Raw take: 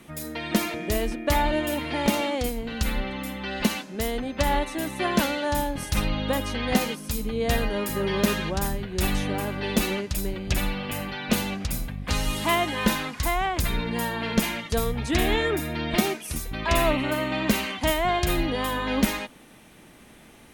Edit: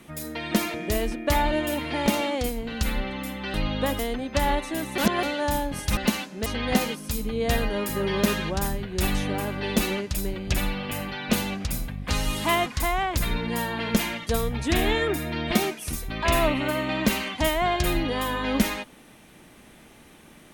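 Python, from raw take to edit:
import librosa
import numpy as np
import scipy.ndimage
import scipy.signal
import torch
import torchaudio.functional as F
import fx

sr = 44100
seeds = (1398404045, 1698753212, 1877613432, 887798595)

y = fx.edit(x, sr, fx.swap(start_s=3.54, length_s=0.49, other_s=6.01, other_length_s=0.45),
    fx.reverse_span(start_s=5.02, length_s=0.25),
    fx.cut(start_s=12.66, length_s=0.43), tone=tone)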